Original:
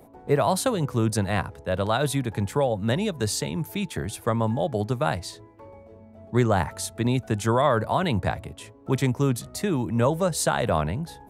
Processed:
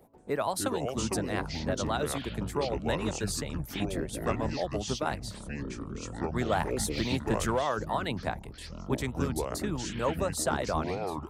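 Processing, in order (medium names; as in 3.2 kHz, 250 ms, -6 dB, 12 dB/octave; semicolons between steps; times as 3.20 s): ever faster or slower copies 181 ms, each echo -6 st, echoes 3; harmonic-percussive split harmonic -14 dB; 6.52–7.59 s: waveshaping leveller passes 1; trim -4.5 dB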